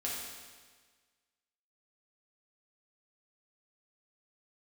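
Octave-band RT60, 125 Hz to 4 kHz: 1.5, 1.5, 1.5, 1.5, 1.5, 1.5 s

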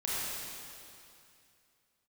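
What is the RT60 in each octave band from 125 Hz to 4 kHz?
2.8, 2.6, 2.6, 2.6, 2.5, 2.5 s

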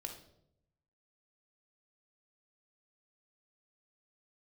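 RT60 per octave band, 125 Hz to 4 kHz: 1.2, 0.95, 0.90, 0.65, 0.50, 0.55 s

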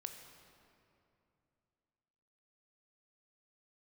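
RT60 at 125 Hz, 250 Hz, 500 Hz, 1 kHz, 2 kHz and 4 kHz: 3.2, 3.1, 2.8, 2.6, 2.2, 1.7 s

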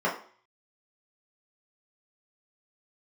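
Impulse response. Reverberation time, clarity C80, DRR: 0.45 s, 13.0 dB, -6.5 dB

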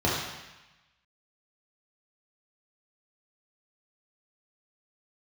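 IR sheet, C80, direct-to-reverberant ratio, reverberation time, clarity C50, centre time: 3.0 dB, -5.5 dB, 1.0 s, 0.5 dB, 70 ms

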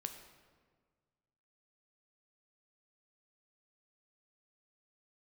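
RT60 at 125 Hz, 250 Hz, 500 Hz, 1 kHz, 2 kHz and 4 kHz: 2.1, 1.8, 1.7, 1.5, 1.3, 1.0 s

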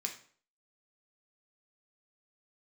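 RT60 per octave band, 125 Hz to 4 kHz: 0.50, 0.50, 0.50, 0.50, 0.45, 0.40 s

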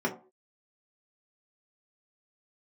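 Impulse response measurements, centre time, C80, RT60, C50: 14 ms, 16.5 dB, not exponential, 11.5 dB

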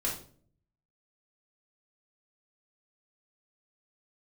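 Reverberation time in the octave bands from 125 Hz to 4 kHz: 0.95, 0.75, 0.60, 0.40, 0.35, 0.35 s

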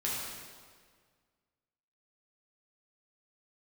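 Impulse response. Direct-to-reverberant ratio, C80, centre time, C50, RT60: -6.5 dB, 1.0 dB, 0.105 s, -1.0 dB, 1.8 s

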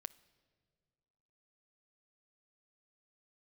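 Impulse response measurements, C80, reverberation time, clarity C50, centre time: 22.0 dB, not exponential, 19.5 dB, 2 ms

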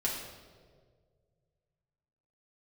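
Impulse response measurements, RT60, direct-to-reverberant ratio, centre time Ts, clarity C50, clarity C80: 1.8 s, -5.5 dB, 58 ms, 3.0 dB, 5.0 dB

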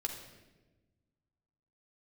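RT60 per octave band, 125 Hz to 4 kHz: 2.1, 1.8, 1.4, 0.95, 1.0, 0.85 s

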